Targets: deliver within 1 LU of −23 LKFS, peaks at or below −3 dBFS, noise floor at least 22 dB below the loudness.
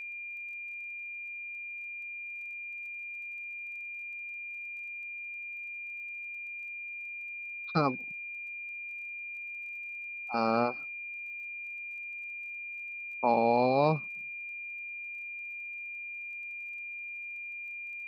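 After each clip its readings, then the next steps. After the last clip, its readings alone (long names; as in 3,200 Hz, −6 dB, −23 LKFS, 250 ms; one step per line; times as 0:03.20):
crackle rate 20 per second; interfering tone 2,400 Hz; level of the tone −38 dBFS; integrated loudness −35.0 LKFS; sample peak −12.5 dBFS; target loudness −23.0 LKFS
→ click removal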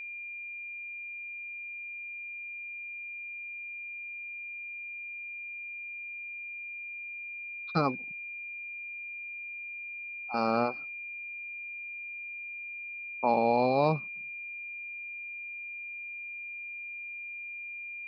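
crackle rate 0 per second; interfering tone 2,400 Hz; level of the tone −38 dBFS
→ notch filter 2,400 Hz, Q 30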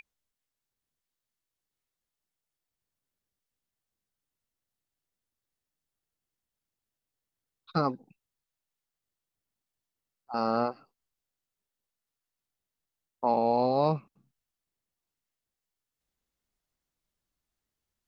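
interfering tone none found; integrated loudness −29.0 LKFS; sample peak −13.0 dBFS; target loudness −23.0 LKFS
→ level +6 dB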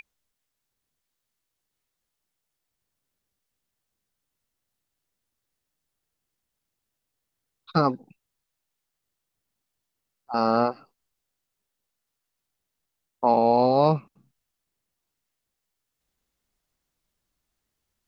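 integrated loudness −23.0 LKFS; sample peak −7.0 dBFS; background noise floor −83 dBFS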